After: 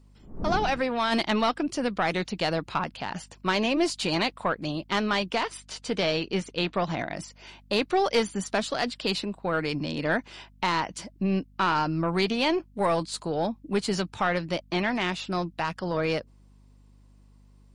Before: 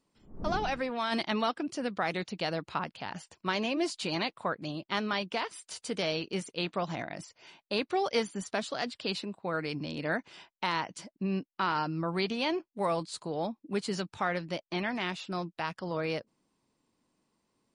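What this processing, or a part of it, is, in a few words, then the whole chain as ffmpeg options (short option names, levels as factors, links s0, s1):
valve amplifier with mains hum: -filter_complex "[0:a]aeval=exprs='(tanh(10*val(0)+0.25)-tanh(0.25))/10':c=same,aeval=exprs='val(0)+0.000891*(sin(2*PI*50*n/s)+sin(2*PI*2*50*n/s)/2+sin(2*PI*3*50*n/s)/3+sin(2*PI*4*50*n/s)/4+sin(2*PI*5*50*n/s)/5)':c=same,asettb=1/sr,asplit=3[s0][s1][s2];[s0]atrim=end=5.574[s3];[s1]atrim=start=5.57:end=7.01,asetpts=PTS-STARTPTS,afade=t=in:d=0.004:c=qsin,afade=t=out:st=1.436:d=0.004:c=qsin,lowpass=5700[s4];[s2]atrim=start=7.006[s5];[s3][s4]acrossfade=d=0.004:c1=hsin:c2=qsin[s6];[s6][s5]acrossfade=d=0.004:c1=qsin:c2=hsin,volume=2.24"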